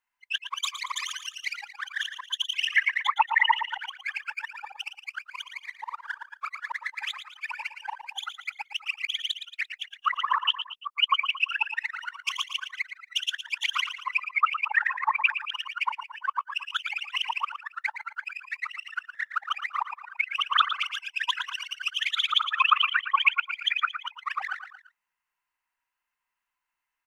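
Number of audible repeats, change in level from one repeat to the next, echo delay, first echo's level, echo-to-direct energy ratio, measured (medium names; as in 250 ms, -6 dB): 3, -6.5 dB, 114 ms, -10.0 dB, -9.0 dB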